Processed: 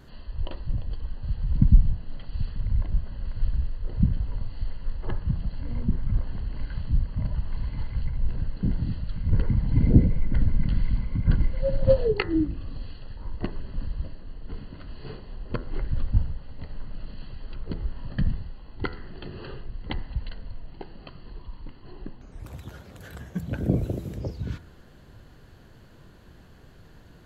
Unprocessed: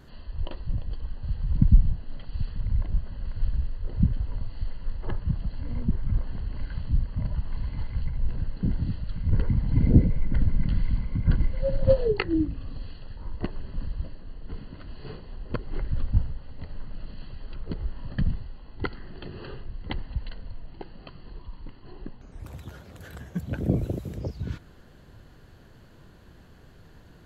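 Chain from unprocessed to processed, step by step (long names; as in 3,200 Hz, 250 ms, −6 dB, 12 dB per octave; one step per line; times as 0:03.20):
hum removal 83.24 Hz, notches 24
level +1 dB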